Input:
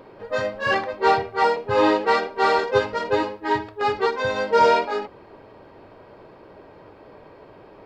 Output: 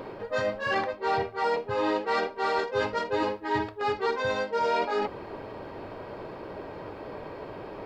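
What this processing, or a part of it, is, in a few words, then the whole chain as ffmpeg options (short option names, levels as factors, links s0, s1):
compression on the reversed sound: -af "areverse,acompressor=threshold=0.0251:ratio=6,areverse,volume=2.11"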